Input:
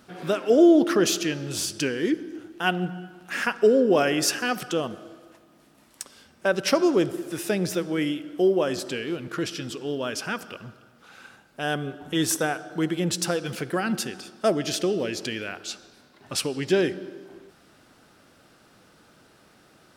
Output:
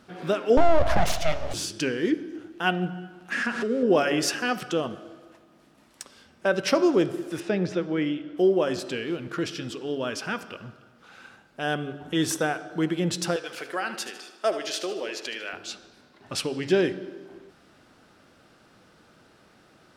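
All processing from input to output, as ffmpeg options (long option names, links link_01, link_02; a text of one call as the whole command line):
ffmpeg -i in.wav -filter_complex "[0:a]asettb=1/sr,asplit=3[link_01][link_02][link_03];[link_01]atrim=end=0.574[link_04];[link_02]atrim=start=0.57:end=1.54,asetpts=PTS-STARTPTS,afade=type=in:duration=0.004:curve=qsin,afade=type=out:start_time=0.966:duration=0.004:curve=qsin,highpass=frequency=260:width_type=q:width=3.1,acompressor=threshold=-13dB:ratio=3:attack=3.2:release=140:knee=1:detection=peak,aeval=exprs='abs(val(0))':channel_layout=same[link_05];[link_03]atrim=start=1.536[link_06];[link_04][link_05]acrossfade=duration=0.004:curve1=hsin:curve2=qsin[link_07];[link_07][link_06]acrossfade=duration=0.004:curve1=qsin:curve2=hsin,asettb=1/sr,asplit=3[link_08][link_09][link_10];[link_08]atrim=end=3.324[link_11];[link_09]atrim=start=3.32:end=3.83,asetpts=PTS-STARTPTS,afade=type=in:duration=0.004:curve=qsin,afade=type=out:start_time=0.506:duration=0.004:curve=qsin,aeval=exprs='val(0)+0.5*0.0355*sgn(val(0))':channel_layout=same,acompressor=threshold=-29dB:ratio=2.5:attack=3.2:release=140:knee=1:detection=peak,highpass=110,equalizer=frequency=230:width_type=q:width=4:gain=9,equalizer=frequency=870:width_type=q:width=4:gain=-4,equalizer=frequency=1700:width_type=q:width=4:gain=5,lowpass=frequency=10000:width=0.5412,lowpass=frequency=10000:width=1.3066[link_12];[link_10]atrim=start=3.826[link_13];[link_11][link_12]acrossfade=duration=0.004:curve1=hsin:curve2=qsin[link_14];[link_14][link_13]acrossfade=duration=0.004:curve1=qsin:curve2=hsin,asettb=1/sr,asplit=3[link_15][link_16][link_17];[link_15]atrim=end=7.404[link_18];[link_16]atrim=start=7.4:end=8.37,asetpts=PTS-STARTPTS,afade=type=in:duration=0.004:curve=qsin,afade=type=out:start_time=0.966:duration=0.004:curve=qsin,lowpass=6900,aemphasis=mode=reproduction:type=50kf[link_19];[link_17]atrim=start=8.366[link_20];[link_18][link_19]acrossfade=duration=0.004:curve1=hsin:curve2=qsin[link_21];[link_21][link_20]acrossfade=duration=0.004:curve1=qsin:curve2=hsin,asettb=1/sr,asplit=3[link_22][link_23][link_24];[link_22]atrim=end=13.364[link_25];[link_23]atrim=start=13.36:end=15.53,asetpts=PTS-STARTPTS,afade=type=in:duration=0.004:curve=qsin,afade=type=out:start_time=2.166:duration=0.004:curve=qsin,highpass=550,aecho=1:1:76|152|228|304|380:0.282|0.13|0.0596|0.0274|0.0126,atrim=end_sample=95697[link_26];[link_24]atrim=start=15.526[link_27];[link_25][link_26]acrossfade=duration=0.004:curve1=hsin:curve2=qsin[link_28];[link_28][link_27]acrossfade=duration=0.004:curve1=qsin:curve2=hsin,highshelf=frequency=8500:gain=-10.5,bandreject=frequency=141.6:width_type=h:width=4,bandreject=frequency=283.2:width_type=h:width=4,bandreject=frequency=424.8:width_type=h:width=4,bandreject=frequency=566.4:width_type=h:width=4,bandreject=frequency=708:width_type=h:width=4,bandreject=frequency=849.6:width_type=h:width=4,bandreject=frequency=991.2:width_type=h:width=4,bandreject=frequency=1132.8:width_type=h:width=4,bandreject=frequency=1274.4:width_type=h:width=4,bandreject=frequency=1416:width_type=h:width=4,bandreject=frequency=1557.6:width_type=h:width=4,bandreject=frequency=1699.2:width_type=h:width=4,bandreject=frequency=1840.8:width_type=h:width=4,bandreject=frequency=1982.4:width_type=h:width=4,bandreject=frequency=2124:width_type=h:width=4,bandreject=frequency=2265.6:width_type=h:width=4,bandreject=frequency=2407.2:width_type=h:width=4,bandreject=frequency=2548.8:width_type=h:width=4,bandreject=frequency=2690.4:width_type=h:width=4,bandreject=frequency=2832:width_type=h:width=4,bandreject=frequency=2973.6:width_type=h:width=4,bandreject=frequency=3115.2:width_type=h:width=4,bandreject=frequency=3256.8:width_type=h:width=4,bandreject=frequency=3398.4:width_type=h:width=4,bandreject=frequency=3540:width_type=h:width=4,bandreject=frequency=3681.6:width_type=h:width=4,bandreject=frequency=3823.2:width_type=h:width=4,bandreject=frequency=3964.8:width_type=h:width=4,bandreject=frequency=4106.4:width_type=h:width=4" out.wav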